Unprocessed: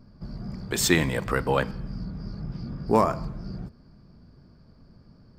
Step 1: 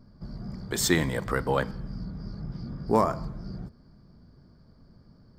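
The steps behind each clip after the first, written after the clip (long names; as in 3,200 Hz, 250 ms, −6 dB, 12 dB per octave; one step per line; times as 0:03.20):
parametric band 2,600 Hz −9.5 dB 0.25 octaves
level −2 dB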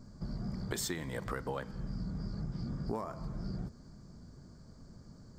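downward compressor 16 to 1, threshold −35 dBFS, peak gain reduction 19 dB
noise in a band 4,300–7,800 Hz −77 dBFS
level +1.5 dB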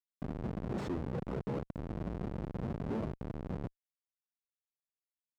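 comparator with hysteresis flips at −37 dBFS
resonant band-pass 290 Hz, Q 0.52
level +7.5 dB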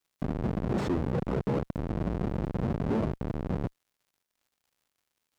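surface crackle 150 per second −68 dBFS
level +8 dB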